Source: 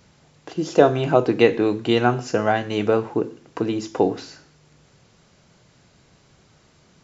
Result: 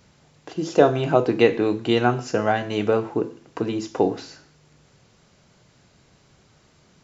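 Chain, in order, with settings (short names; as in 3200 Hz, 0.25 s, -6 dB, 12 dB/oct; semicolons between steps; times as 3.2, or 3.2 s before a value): de-hum 166.2 Hz, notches 40; gain -1 dB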